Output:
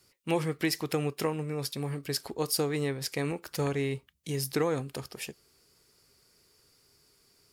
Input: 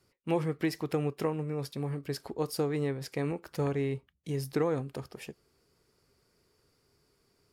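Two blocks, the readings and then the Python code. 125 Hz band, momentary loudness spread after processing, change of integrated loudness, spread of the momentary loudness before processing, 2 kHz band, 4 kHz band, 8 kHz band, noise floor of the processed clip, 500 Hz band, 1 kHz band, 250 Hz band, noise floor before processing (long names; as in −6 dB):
0.0 dB, 9 LU, +1.5 dB, 9 LU, +5.0 dB, +9.0 dB, +11.0 dB, −67 dBFS, +0.5 dB, +2.0 dB, 0.0 dB, −72 dBFS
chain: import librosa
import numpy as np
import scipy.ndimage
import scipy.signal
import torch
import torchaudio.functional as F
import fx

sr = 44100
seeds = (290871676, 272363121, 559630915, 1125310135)

y = fx.high_shelf(x, sr, hz=2200.0, db=11.5)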